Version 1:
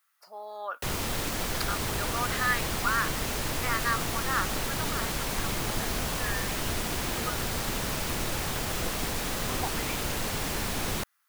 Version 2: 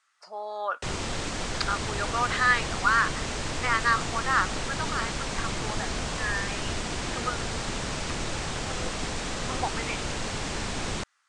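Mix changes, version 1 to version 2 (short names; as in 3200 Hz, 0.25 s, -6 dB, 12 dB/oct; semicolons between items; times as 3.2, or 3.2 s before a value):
speech +5.5 dB; master: add steep low-pass 8600 Hz 48 dB/oct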